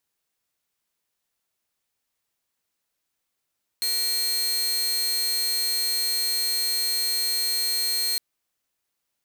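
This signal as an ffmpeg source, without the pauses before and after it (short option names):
-f lavfi -i "aevalsrc='0.1*(2*mod(4220*t,1)-1)':d=4.36:s=44100"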